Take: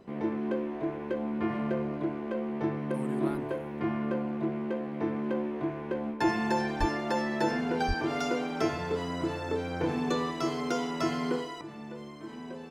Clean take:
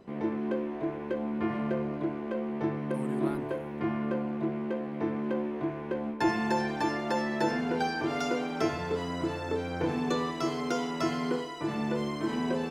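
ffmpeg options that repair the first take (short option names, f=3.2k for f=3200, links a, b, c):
-filter_complex "[0:a]asplit=3[a][b][c];[a]afade=t=out:st=6.79:d=0.02[d];[b]highpass=f=140:w=0.5412,highpass=f=140:w=1.3066,afade=t=in:st=6.79:d=0.02,afade=t=out:st=6.91:d=0.02[e];[c]afade=t=in:st=6.91:d=0.02[f];[d][e][f]amix=inputs=3:normalize=0,asplit=3[g][h][i];[g]afade=t=out:st=7.87:d=0.02[j];[h]highpass=f=140:w=0.5412,highpass=f=140:w=1.3066,afade=t=in:st=7.87:d=0.02,afade=t=out:st=7.99:d=0.02[k];[i]afade=t=in:st=7.99:d=0.02[l];[j][k][l]amix=inputs=3:normalize=0,asetnsamples=n=441:p=0,asendcmd='11.61 volume volume 11.5dB',volume=0dB"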